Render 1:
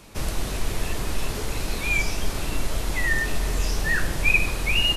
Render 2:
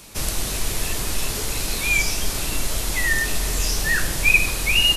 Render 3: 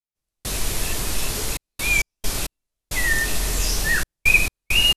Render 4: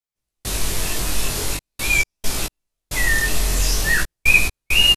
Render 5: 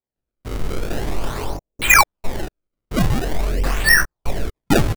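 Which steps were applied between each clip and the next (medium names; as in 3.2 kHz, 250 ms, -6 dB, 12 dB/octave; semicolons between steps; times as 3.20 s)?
treble shelf 3.3 kHz +11.5 dB
trance gate "..xxxxx.x.x" 67 bpm -60 dB
chorus 0.44 Hz, delay 15.5 ms, depth 7.5 ms; trim +5 dB
LFO low-pass saw down 1.1 Hz 400–3600 Hz; decimation with a swept rate 29×, swing 160% 0.44 Hz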